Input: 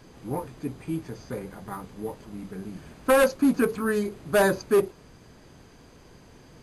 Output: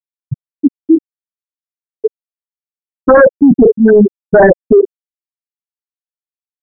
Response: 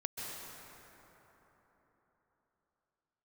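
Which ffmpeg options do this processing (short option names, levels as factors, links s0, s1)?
-filter_complex "[0:a]afftfilt=real='re*gte(hypot(re,im),0.355)':imag='im*gte(hypot(re,im),0.355)':win_size=1024:overlap=0.75,apsyclip=22.4,acrossover=split=2700[s0][s1];[s1]acompressor=threshold=0.0126:ratio=4:attack=1:release=60[s2];[s0][s2]amix=inputs=2:normalize=0,volume=0.841"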